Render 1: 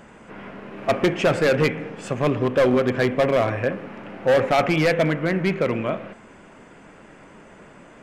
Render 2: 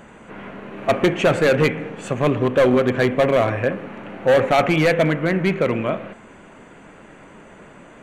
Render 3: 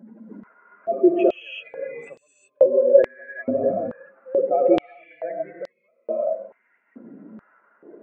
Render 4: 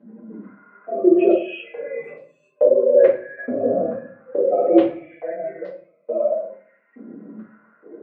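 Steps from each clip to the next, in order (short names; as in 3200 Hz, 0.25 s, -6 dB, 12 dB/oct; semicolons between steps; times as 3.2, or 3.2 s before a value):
notch 5100 Hz, Q 5; gain +2.5 dB
spectral contrast raised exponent 2.9; non-linear reverb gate 0.41 s rising, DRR -2.5 dB; stepped high-pass 2.3 Hz 240–4800 Hz; gain -9 dB
BPF 130–2900 Hz; shoebox room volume 40 m³, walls mixed, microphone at 2 m; gain -9 dB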